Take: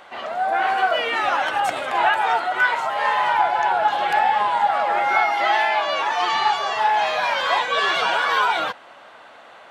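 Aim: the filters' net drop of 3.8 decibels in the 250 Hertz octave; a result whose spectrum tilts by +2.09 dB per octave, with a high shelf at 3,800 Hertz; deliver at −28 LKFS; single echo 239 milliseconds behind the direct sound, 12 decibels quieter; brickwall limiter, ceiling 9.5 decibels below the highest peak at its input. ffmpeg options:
ffmpeg -i in.wav -af "equalizer=frequency=250:width_type=o:gain=-6,highshelf=frequency=3800:gain=-9,alimiter=limit=-16.5dB:level=0:latency=1,aecho=1:1:239:0.251,volume=-3.5dB" out.wav

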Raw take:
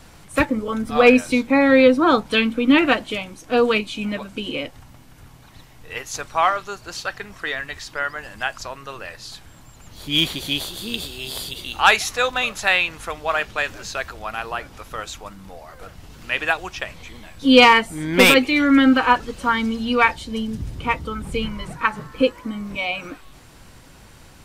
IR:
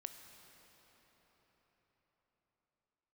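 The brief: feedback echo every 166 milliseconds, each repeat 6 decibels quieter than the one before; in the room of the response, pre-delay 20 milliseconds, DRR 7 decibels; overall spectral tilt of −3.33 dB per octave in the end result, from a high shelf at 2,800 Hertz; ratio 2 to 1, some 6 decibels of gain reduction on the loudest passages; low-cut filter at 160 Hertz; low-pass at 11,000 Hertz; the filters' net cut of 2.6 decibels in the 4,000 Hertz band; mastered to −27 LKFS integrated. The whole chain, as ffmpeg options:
-filter_complex "[0:a]highpass=160,lowpass=11000,highshelf=frequency=2800:gain=4,equalizer=frequency=4000:width_type=o:gain=-7,acompressor=threshold=-18dB:ratio=2,aecho=1:1:166|332|498|664|830|996:0.501|0.251|0.125|0.0626|0.0313|0.0157,asplit=2[link_01][link_02];[1:a]atrim=start_sample=2205,adelay=20[link_03];[link_02][link_03]afir=irnorm=-1:irlink=0,volume=-3dB[link_04];[link_01][link_04]amix=inputs=2:normalize=0,volume=-5dB"

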